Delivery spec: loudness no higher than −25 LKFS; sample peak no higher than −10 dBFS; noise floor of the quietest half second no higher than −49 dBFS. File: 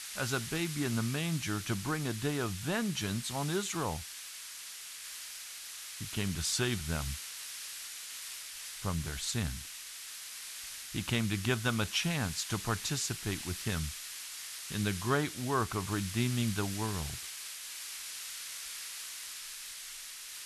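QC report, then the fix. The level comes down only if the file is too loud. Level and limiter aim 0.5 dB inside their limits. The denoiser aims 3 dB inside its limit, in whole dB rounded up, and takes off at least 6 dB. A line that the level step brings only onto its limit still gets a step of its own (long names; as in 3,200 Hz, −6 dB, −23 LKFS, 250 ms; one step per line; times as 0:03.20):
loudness −35.5 LKFS: in spec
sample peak −14.0 dBFS: in spec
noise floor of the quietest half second −46 dBFS: out of spec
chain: broadband denoise 6 dB, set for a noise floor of −46 dBFS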